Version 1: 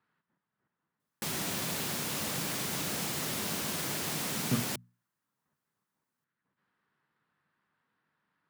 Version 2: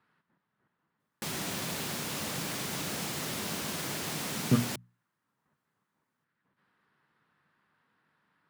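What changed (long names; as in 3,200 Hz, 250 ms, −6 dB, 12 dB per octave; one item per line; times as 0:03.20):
speech +6.0 dB
background: add high-shelf EQ 9,100 Hz −4.5 dB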